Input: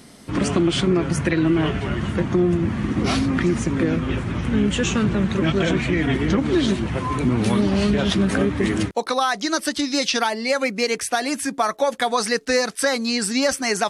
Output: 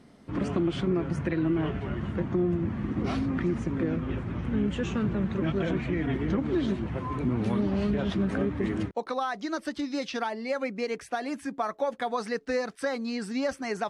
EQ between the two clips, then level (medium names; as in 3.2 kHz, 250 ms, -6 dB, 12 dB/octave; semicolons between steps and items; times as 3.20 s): low-pass 1.4 kHz 6 dB/octave; -7.5 dB